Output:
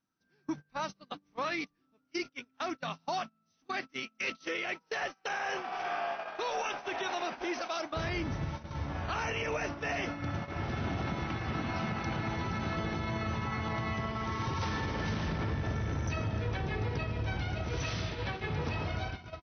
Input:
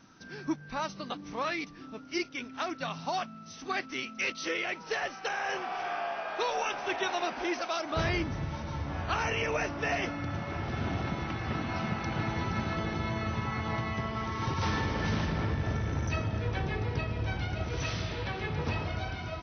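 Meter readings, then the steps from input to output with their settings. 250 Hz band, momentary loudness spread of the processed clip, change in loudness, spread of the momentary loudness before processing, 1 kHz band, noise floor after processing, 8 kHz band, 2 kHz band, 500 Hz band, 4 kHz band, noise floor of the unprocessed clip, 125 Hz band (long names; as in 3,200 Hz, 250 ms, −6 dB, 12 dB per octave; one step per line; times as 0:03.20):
−2.5 dB, 5 LU, −2.0 dB, 6 LU, −2.0 dB, −75 dBFS, can't be measured, −2.5 dB, −2.5 dB, −2.5 dB, −47 dBFS, −2.0 dB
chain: noise gate −35 dBFS, range −28 dB
brickwall limiter −25 dBFS, peak gain reduction 7.5 dB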